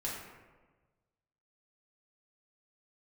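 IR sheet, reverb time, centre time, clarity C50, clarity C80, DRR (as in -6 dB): 1.3 s, 68 ms, 1.5 dB, 3.5 dB, -5.5 dB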